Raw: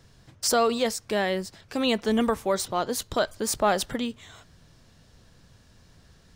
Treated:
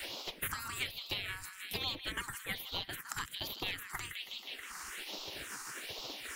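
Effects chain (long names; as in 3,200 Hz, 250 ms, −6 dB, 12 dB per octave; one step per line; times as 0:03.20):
gate on every frequency bin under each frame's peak −20 dB weak
transient designer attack +5 dB, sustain −3 dB
delay with a high-pass on its return 160 ms, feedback 58%, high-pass 1,400 Hz, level −11.5 dB
all-pass phaser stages 4, 1.2 Hz, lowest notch 550–1,700 Hz
gain into a clipping stage and back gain 26 dB
multiband upward and downward compressor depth 100%
level +2 dB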